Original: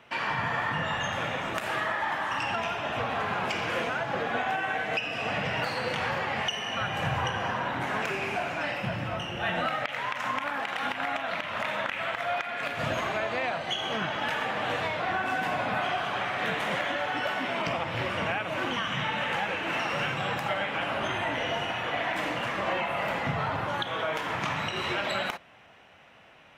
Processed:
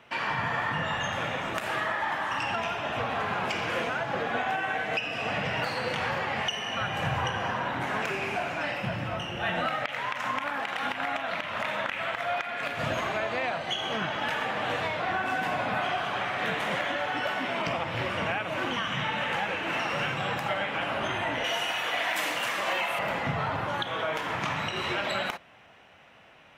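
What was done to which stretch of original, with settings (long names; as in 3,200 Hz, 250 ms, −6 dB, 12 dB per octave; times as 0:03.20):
0:21.44–0:22.99: RIAA equalisation recording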